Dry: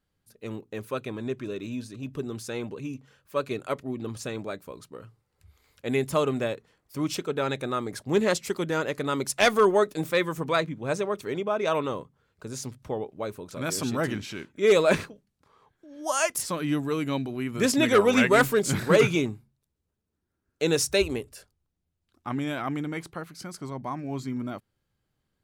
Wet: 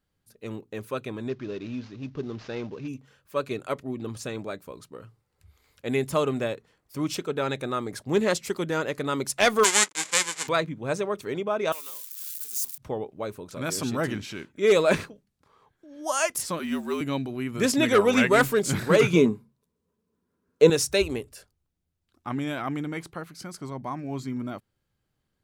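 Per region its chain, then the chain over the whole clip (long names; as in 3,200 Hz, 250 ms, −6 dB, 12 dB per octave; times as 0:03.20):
0:01.29–0:02.88: variable-slope delta modulation 32 kbit/s + high-shelf EQ 4,300 Hz −8 dB
0:09.63–0:10.47: spectral envelope flattened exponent 0.1 + slack as between gear wheels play −34.5 dBFS + loudspeaker in its box 370–9,500 Hz, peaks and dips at 680 Hz −7 dB, 2,100 Hz +5 dB, 7,300 Hz +10 dB
0:11.72–0:12.78: spike at every zero crossing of −26.5 dBFS + high-pass filter 59 Hz + first difference
0:16.59–0:17.01: high-pass filter 280 Hz 24 dB per octave + noise that follows the level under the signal 30 dB + frequency shifter −53 Hz
0:19.13–0:20.70: low-shelf EQ 170 Hz −7.5 dB + double-tracking delay 12 ms −14 dB + hollow resonant body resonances 210/440/1,000 Hz, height 14 dB, ringing for 30 ms
whole clip: no processing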